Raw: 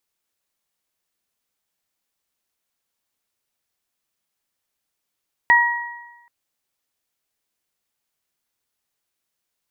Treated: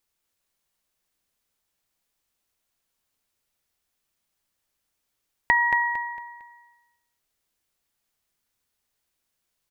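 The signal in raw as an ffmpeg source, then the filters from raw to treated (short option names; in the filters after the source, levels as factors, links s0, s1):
-f lavfi -i "aevalsrc='0.211*pow(10,-3*t/1.12)*sin(2*PI*952*t)+0.335*pow(10,-3*t/1.01)*sin(2*PI*1904*t)':d=0.78:s=44100"
-af "lowshelf=f=84:g=9.5,acompressor=threshold=0.141:ratio=6,aecho=1:1:227|454|681|908:0.447|0.156|0.0547|0.0192"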